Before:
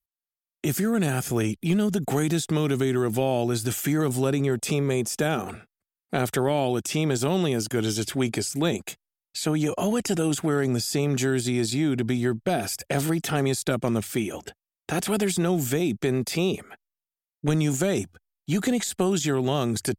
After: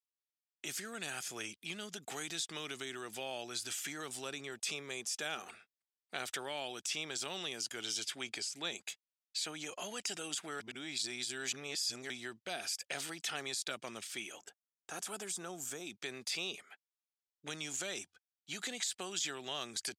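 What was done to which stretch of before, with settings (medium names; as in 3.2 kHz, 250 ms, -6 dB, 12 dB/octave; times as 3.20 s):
8.22–8.71 s: treble shelf 9 kHz -7.5 dB
10.60–12.10 s: reverse
14.39–15.87 s: high-order bell 3 kHz -9.5 dB
whole clip: low-pass 4.4 kHz 12 dB/octave; differentiator; trim +3 dB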